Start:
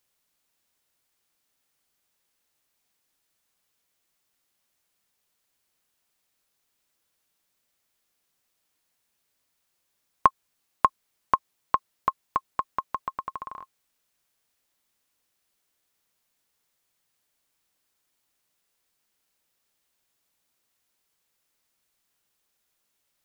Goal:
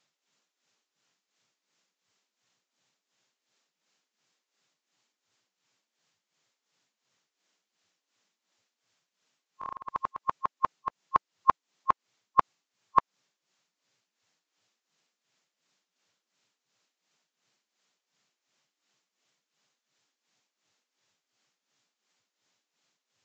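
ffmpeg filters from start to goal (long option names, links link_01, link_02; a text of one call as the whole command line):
ffmpeg -i in.wav -af "areverse,tremolo=f=2.8:d=0.73,volume=4dB" -ar 16000 -c:a libvorbis -b:a 64k out.ogg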